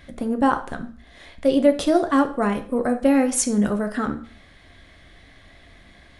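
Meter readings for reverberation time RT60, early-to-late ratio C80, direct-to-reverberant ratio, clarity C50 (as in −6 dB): 0.45 s, 17.0 dB, 6.5 dB, 12.5 dB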